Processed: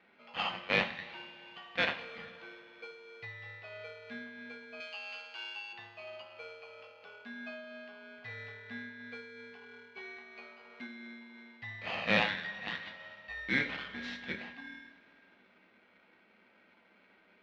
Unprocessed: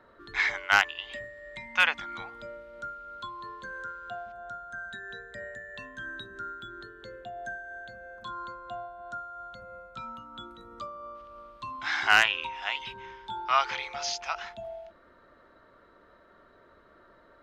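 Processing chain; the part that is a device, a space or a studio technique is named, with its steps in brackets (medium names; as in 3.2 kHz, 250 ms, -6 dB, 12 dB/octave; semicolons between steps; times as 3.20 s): ring modulator pedal into a guitar cabinet (polarity switched at an audio rate 940 Hz; cabinet simulation 100–3500 Hz, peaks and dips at 130 Hz -7 dB, 190 Hz +8 dB, 390 Hz -5 dB, 1.2 kHz -3 dB, 1.9 kHz +4 dB); 4.80–5.73 s: frequency weighting ITU-R 468; two-slope reverb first 0.48 s, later 3.2 s, from -18 dB, DRR 5.5 dB; trim -7.5 dB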